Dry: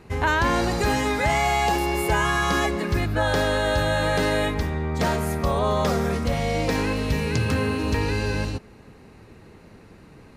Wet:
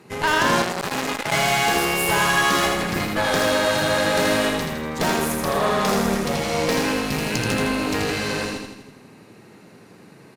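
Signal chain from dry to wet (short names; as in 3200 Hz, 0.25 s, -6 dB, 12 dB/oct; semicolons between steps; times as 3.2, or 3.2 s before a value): HPF 130 Hz 24 dB/oct; high shelf 5300 Hz +6.5 dB; added harmonics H 8 -17 dB, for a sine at -8 dBFS; feedback echo 81 ms, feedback 55%, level -4 dB; 0.62–1.32 core saturation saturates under 2200 Hz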